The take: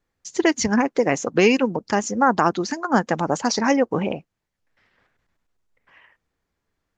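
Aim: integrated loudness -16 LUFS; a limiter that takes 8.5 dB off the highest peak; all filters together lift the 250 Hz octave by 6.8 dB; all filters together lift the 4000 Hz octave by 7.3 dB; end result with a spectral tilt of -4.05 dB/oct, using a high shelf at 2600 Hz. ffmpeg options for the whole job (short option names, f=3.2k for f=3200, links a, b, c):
-af "equalizer=f=250:t=o:g=8,highshelf=f=2.6k:g=5.5,equalizer=f=4k:t=o:g=5,volume=3dB,alimiter=limit=-5dB:level=0:latency=1"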